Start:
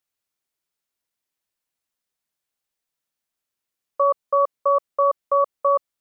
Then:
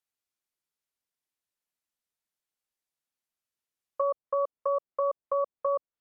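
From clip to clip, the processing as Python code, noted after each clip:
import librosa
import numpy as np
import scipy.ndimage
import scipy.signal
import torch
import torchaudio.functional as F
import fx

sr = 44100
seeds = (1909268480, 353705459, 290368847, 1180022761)

y = fx.env_lowpass_down(x, sr, base_hz=850.0, full_db=-20.0)
y = F.gain(torch.from_numpy(y), -6.5).numpy()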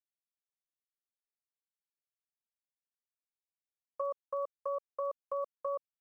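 y = np.where(np.abs(x) >= 10.0 ** (-51.5 / 20.0), x, 0.0)
y = F.gain(torch.from_numpy(y), -8.0).numpy()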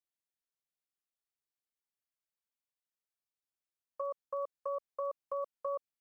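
y = fx.rider(x, sr, range_db=10, speed_s=0.5)
y = F.gain(torch.from_numpy(y), -1.0).numpy()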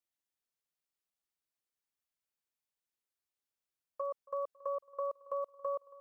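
y = fx.echo_feedback(x, sr, ms=276, feedback_pct=59, wet_db=-22)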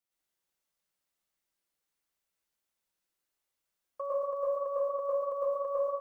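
y = fx.rev_plate(x, sr, seeds[0], rt60_s=0.72, hf_ratio=0.65, predelay_ms=90, drr_db=-6.0)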